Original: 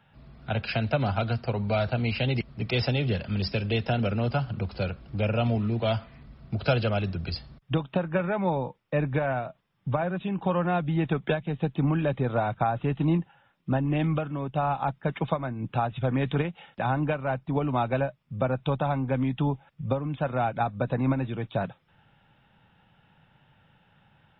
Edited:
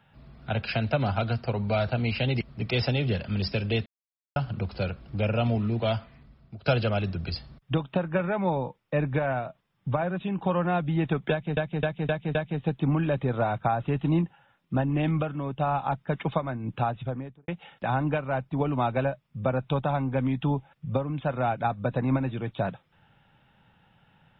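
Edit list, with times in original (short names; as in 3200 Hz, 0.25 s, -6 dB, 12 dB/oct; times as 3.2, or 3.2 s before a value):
3.86–4.36 mute
5.85–6.66 fade out linear, to -18 dB
11.31–11.57 loop, 5 plays
15.74–16.44 studio fade out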